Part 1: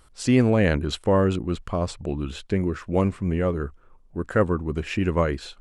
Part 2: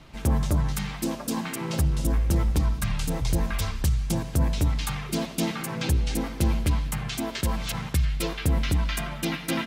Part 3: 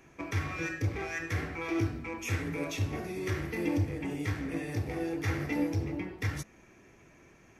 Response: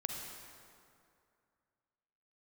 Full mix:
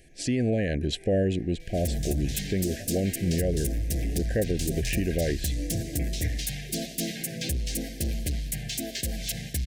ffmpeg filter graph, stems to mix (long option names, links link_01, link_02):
-filter_complex "[0:a]volume=-1dB,asplit=2[link_01][link_02];[1:a]bass=frequency=250:gain=0,treble=frequency=4000:gain=11,asoftclip=type=tanh:threshold=-19.5dB,adelay=1600,volume=-3.5dB[link_03];[2:a]volume=-2dB[link_04];[link_02]apad=whole_len=335095[link_05];[link_04][link_05]sidechaincompress=threshold=-42dB:ratio=4:attack=5.6:release=293[link_06];[link_01][link_03][link_06]amix=inputs=3:normalize=0,asuperstop=centerf=1100:order=20:qfactor=1.3,alimiter=limit=-17dB:level=0:latency=1:release=89"